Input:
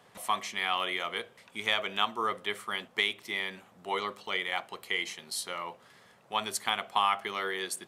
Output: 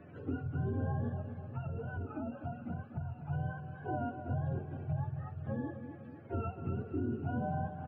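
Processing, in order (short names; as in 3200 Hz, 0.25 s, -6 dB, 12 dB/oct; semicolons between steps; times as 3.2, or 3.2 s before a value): spectrum mirrored in octaves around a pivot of 540 Hz; LPF 3200 Hz; low shelf 130 Hz -8 dB; harmonic-percussive split percussive -11 dB; low shelf 430 Hz -4.5 dB; limiter -32 dBFS, peak gain reduction 10 dB; 1.11–3.27 compressor, threshold -43 dBFS, peak gain reduction 8 dB; feedback echo 0.245 s, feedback 46%, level -11 dB; three-band squash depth 40%; gain +5 dB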